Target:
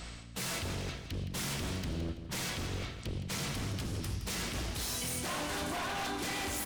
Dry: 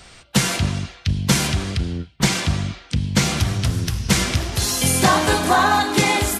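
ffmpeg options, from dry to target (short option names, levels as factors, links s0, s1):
-filter_complex "[0:a]bandreject=f=70.71:t=h:w=4,bandreject=f=141.42:t=h:w=4,bandreject=f=212.13:t=h:w=4,bandreject=f=282.84:t=h:w=4,bandreject=f=353.55:t=h:w=4,bandreject=f=424.26:t=h:w=4,bandreject=f=494.97:t=h:w=4,bandreject=f=565.68:t=h:w=4,bandreject=f=636.39:t=h:w=4,bandreject=f=707.1:t=h:w=4,bandreject=f=777.81:t=h:w=4,bandreject=f=848.52:t=h:w=4,bandreject=f=919.23:t=h:w=4,bandreject=f=989.94:t=h:w=4,bandreject=f=1060.65:t=h:w=4,bandreject=f=1131.36:t=h:w=4,bandreject=f=1202.07:t=h:w=4,bandreject=f=1272.78:t=h:w=4,bandreject=f=1343.49:t=h:w=4,bandreject=f=1414.2:t=h:w=4,bandreject=f=1484.91:t=h:w=4,bandreject=f=1555.62:t=h:w=4,bandreject=f=1626.33:t=h:w=4,bandreject=f=1697.04:t=h:w=4,bandreject=f=1767.75:t=h:w=4,bandreject=f=1838.46:t=h:w=4,bandreject=f=1909.17:t=h:w=4,bandreject=f=1979.88:t=h:w=4,areverse,acompressor=threshold=0.0355:ratio=6,areverse,aeval=exprs='val(0)+0.00562*(sin(2*PI*60*n/s)+sin(2*PI*2*60*n/s)/2+sin(2*PI*3*60*n/s)/3+sin(2*PI*4*60*n/s)/4+sin(2*PI*5*60*n/s)/5)':c=same,aeval=exprs='0.0335*(abs(mod(val(0)/0.0335+3,4)-2)-1)':c=same,asplit=2[s0][s1];[s1]aecho=0:1:159|318|477:0.299|0.0896|0.0269[s2];[s0][s2]amix=inputs=2:normalize=0,asetrate=42336,aresample=44100,volume=0.794"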